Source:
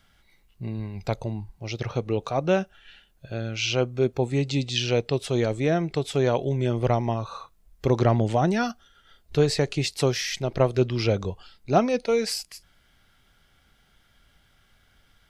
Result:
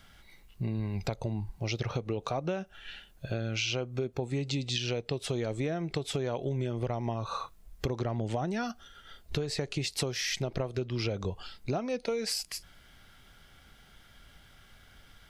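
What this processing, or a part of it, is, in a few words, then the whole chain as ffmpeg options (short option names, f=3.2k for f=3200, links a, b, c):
serial compression, peaks first: -af "acompressor=threshold=-29dB:ratio=6,acompressor=threshold=-37dB:ratio=2,volume=5dB"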